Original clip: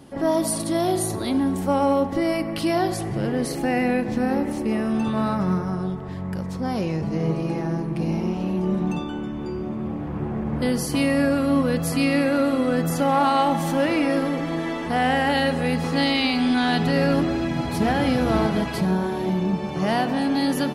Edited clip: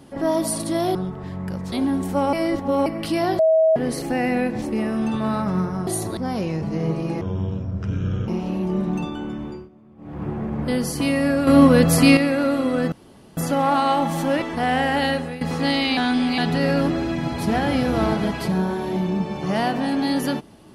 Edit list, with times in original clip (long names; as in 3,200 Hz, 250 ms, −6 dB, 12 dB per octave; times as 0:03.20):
0:00.95–0:01.25: swap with 0:05.80–0:06.57
0:01.86–0:02.39: reverse
0:02.92–0:03.29: beep over 641 Hz −12.5 dBFS
0:04.15–0:04.55: remove
0:07.61–0:08.22: play speed 57%
0:09.37–0:10.17: duck −21 dB, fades 0.26 s
0:11.41–0:12.11: clip gain +8 dB
0:12.86: splice in room tone 0.45 s
0:13.91–0:14.75: remove
0:15.42–0:15.74: fade out, to −15.5 dB
0:16.30–0:16.71: reverse